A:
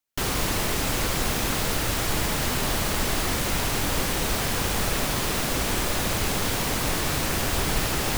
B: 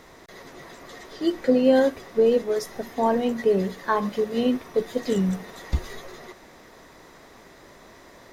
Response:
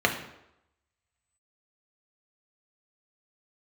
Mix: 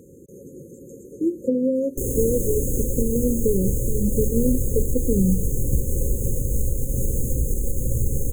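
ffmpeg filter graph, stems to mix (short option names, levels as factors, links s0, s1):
-filter_complex "[0:a]asubboost=boost=5:cutoff=130,alimiter=limit=0.211:level=0:latency=1:release=283,acrusher=bits=4:mode=log:mix=0:aa=0.000001,adelay=1800,volume=1.12,asplit=2[s0][s1];[s1]volume=0.141[s2];[1:a]acompressor=threshold=0.0631:ratio=6,highpass=99,lowshelf=f=250:g=9,volume=1.33[s3];[2:a]atrim=start_sample=2205[s4];[s2][s4]afir=irnorm=-1:irlink=0[s5];[s0][s3][s5]amix=inputs=3:normalize=0,afftfilt=real='re*(1-between(b*sr/4096,560,6300))':imag='im*(1-between(b*sr/4096,560,6300))':win_size=4096:overlap=0.75"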